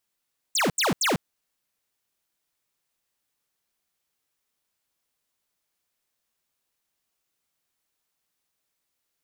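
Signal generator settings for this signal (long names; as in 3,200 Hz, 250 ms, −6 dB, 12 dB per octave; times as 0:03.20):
repeated falling chirps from 8,900 Hz, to 130 Hz, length 0.15 s square, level −22.5 dB, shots 3, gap 0.08 s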